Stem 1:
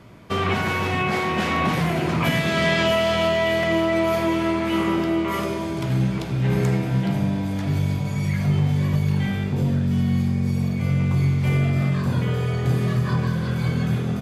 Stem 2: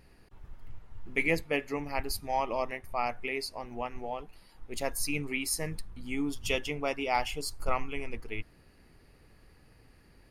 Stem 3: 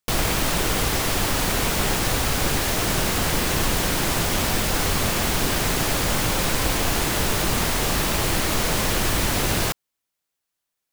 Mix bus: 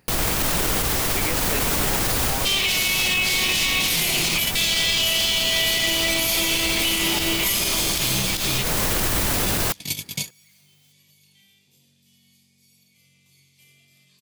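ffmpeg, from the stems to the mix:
ffmpeg -i stem1.wav -i stem2.wav -i stem3.wav -filter_complex "[0:a]aexciter=amount=12.9:drive=7.4:freq=2300,adelay=2150,volume=0dB[link_01];[1:a]equalizer=frequency=350:width=0.75:gain=-3,aphaser=in_gain=1:out_gain=1:delay=2.3:decay=0.27:speed=1.6:type=sinusoidal,volume=0dB,asplit=2[link_02][link_03];[2:a]volume=0dB[link_04];[link_03]apad=whole_len=721512[link_05];[link_01][link_05]sidechaingate=range=-54dB:threshold=-52dB:ratio=16:detection=peak[link_06];[link_06][link_02]amix=inputs=2:normalize=0,highpass=130,alimiter=limit=-2dB:level=0:latency=1,volume=0dB[link_07];[link_04][link_07]amix=inputs=2:normalize=0,highshelf=frequency=9500:gain=7.5,dynaudnorm=framelen=160:gausssize=3:maxgain=12dB,alimiter=limit=-12dB:level=0:latency=1:release=103" out.wav

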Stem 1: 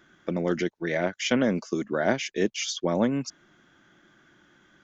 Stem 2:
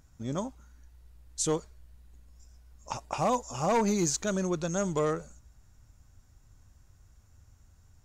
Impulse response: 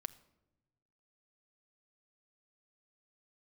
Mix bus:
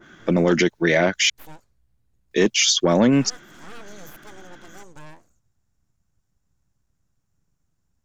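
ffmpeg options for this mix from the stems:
-filter_complex "[0:a]aeval=exprs='0.398*sin(PI/2*1.58*val(0)/0.398)':channel_layout=same,adynamicequalizer=threshold=0.0355:dfrequency=1900:dqfactor=0.7:tfrequency=1900:tqfactor=0.7:attack=5:release=100:ratio=0.375:range=2:mode=boostabove:tftype=highshelf,volume=3dB,asplit=3[link_01][link_02][link_03];[link_01]atrim=end=1.3,asetpts=PTS-STARTPTS,afade=type=out:start_time=1.296:duration=0.004:curve=hsin[link_04];[link_02]atrim=start=1.3:end=2.31,asetpts=PTS-STARTPTS,volume=0[link_05];[link_03]atrim=start=2.31,asetpts=PTS-STARTPTS,afade=type=in:duration=0.004:curve=hsin[link_06];[link_04][link_05][link_06]concat=n=3:v=0:a=1[link_07];[1:a]aeval=exprs='abs(val(0))':channel_layout=same,volume=-12dB[link_08];[link_07][link_08]amix=inputs=2:normalize=0,alimiter=limit=-8.5dB:level=0:latency=1:release=15"

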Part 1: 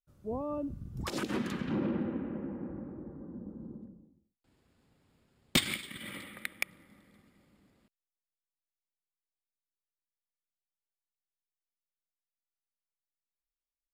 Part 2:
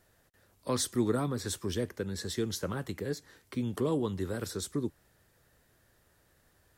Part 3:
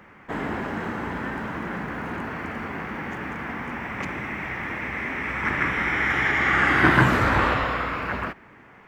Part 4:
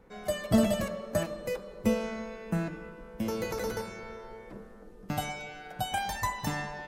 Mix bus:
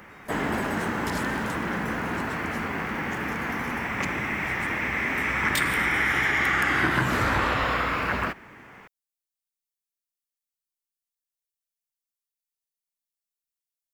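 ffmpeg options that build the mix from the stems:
ffmpeg -i stem1.wav -i stem2.wav -i stem3.wav -i stem4.wav -filter_complex "[0:a]tiltshelf=frequency=970:gain=-6.5,volume=-9.5dB[link_01];[1:a]acompressor=threshold=-36dB:ratio=6,volume=-15.5dB[link_02];[2:a]volume=1.5dB[link_03];[3:a]volume=-14.5dB[link_04];[link_01][link_02][link_03][link_04]amix=inputs=4:normalize=0,highshelf=frequency=4200:gain=10,acompressor=threshold=-20dB:ratio=6" out.wav

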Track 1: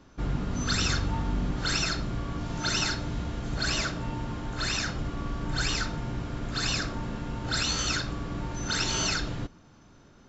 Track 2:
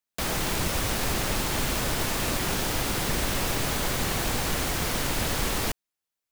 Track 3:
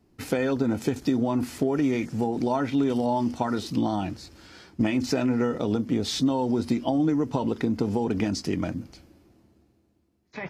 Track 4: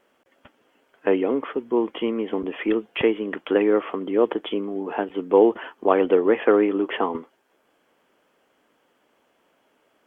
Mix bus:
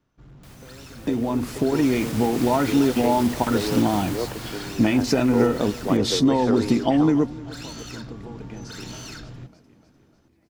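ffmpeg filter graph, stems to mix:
ffmpeg -i stem1.wav -i stem2.wav -i stem3.wav -i stem4.wav -filter_complex "[0:a]equalizer=frequency=130:width_type=o:width=0.34:gain=10.5,volume=25dB,asoftclip=hard,volume=-25dB,volume=-18.5dB[link_01];[1:a]highpass=51,alimiter=limit=-22.5dB:level=0:latency=1:release=340,adelay=250,volume=-10.5dB,afade=type=in:start_time=1.54:duration=0.5:silence=0.398107,afade=type=out:start_time=3.94:duration=0.8:silence=0.398107,asplit=2[link_02][link_03];[link_03]volume=-20.5dB[link_04];[2:a]acompressor=mode=upward:threshold=-35dB:ratio=2.5,volume=-4dB,asplit=2[link_05][link_06];[link_06]volume=-19.5dB[link_07];[3:a]volume=-18dB,asplit=2[link_08][link_09];[link_09]apad=whole_len=462765[link_10];[link_05][link_10]sidechaingate=range=-44dB:threshold=-54dB:ratio=16:detection=peak[link_11];[link_04][link_07]amix=inputs=2:normalize=0,aecho=0:1:299|598|897|1196|1495|1794|2093:1|0.51|0.26|0.133|0.0677|0.0345|0.0176[link_12];[link_01][link_02][link_11][link_08][link_12]amix=inputs=5:normalize=0,dynaudnorm=framelen=260:gausssize=11:maxgain=9dB" out.wav

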